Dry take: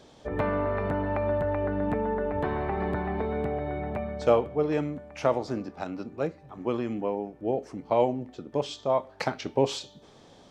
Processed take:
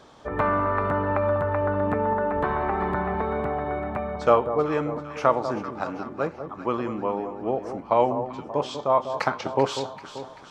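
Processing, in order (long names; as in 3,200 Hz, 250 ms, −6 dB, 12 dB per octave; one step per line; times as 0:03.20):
parametric band 1,200 Hz +11 dB 1 octave
on a send: delay that swaps between a low-pass and a high-pass 194 ms, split 1,100 Hz, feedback 71%, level −9 dB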